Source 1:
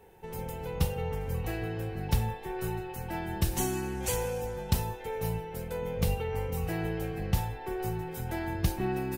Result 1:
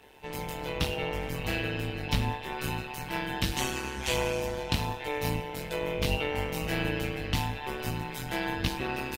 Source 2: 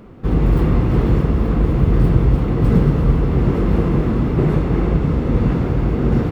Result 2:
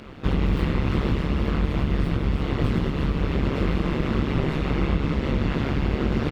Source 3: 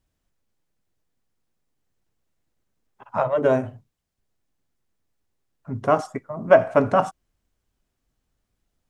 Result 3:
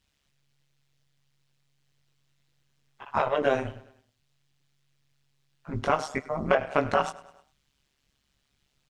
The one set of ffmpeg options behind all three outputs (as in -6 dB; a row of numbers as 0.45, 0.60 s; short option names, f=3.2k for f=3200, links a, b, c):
-filter_complex "[0:a]equalizer=f=3.4k:w=0.51:g=14,acrossover=split=3800[a][b];[b]alimiter=level_in=1dB:limit=-24dB:level=0:latency=1:release=415,volume=-1dB[c];[a][c]amix=inputs=2:normalize=0,acompressor=threshold=-19dB:ratio=5,asplit=2[d][e];[e]adelay=18,volume=-2dB[f];[d][f]amix=inputs=2:normalize=0,aecho=1:1:101|202|303|404:0.1|0.053|0.0281|0.0149,tremolo=f=140:d=0.857"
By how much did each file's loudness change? +1.5, -7.5, -6.5 LU